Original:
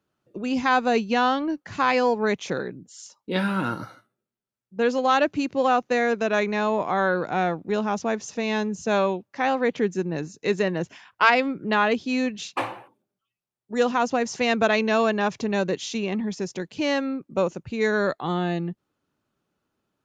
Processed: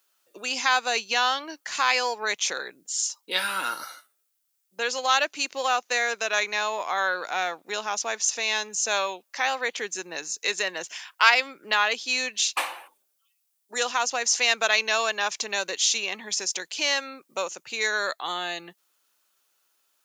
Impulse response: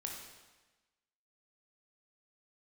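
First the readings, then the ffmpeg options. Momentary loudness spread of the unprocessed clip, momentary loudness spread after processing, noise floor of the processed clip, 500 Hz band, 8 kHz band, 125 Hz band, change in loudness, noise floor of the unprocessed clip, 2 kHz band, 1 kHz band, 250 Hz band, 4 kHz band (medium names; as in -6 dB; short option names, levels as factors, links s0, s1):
10 LU, 11 LU, -73 dBFS, -8.5 dB, no reading, under -20 dB, -1.0 dB, -85 dBFS, +2.0 dB, -2.5 dB, -19.5 dB, +8.0 dB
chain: -filter_complex "[0:a]highpass=630,asplit=2[s0][s1];[s1]acompressor=threshold=0.0141:ratio=6,volume=1[s2];[s0][s2]amix=inputs=2:normalize=0,crystalizer=i=7.5:c=0,volume=0.473"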